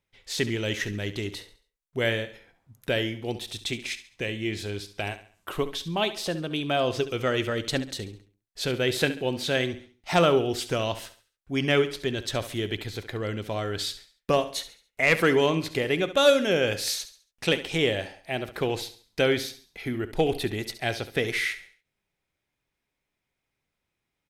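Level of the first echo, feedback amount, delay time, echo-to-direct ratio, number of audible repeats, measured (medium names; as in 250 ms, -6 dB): -13.5 dB, 38%, 69 ms, -13.0 dB, 3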